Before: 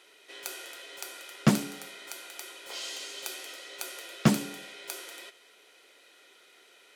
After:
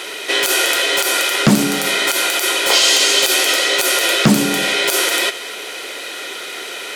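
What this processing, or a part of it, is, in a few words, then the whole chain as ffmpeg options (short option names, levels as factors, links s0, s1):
loud club master: -af "acompressor=threshold=0.00891:ratio=2,asoftclip=type=hard:threshold=0.0891,alimiter=level_in=35.5:limit=0.891:release=50:level=0:latency=1,volume=0.891"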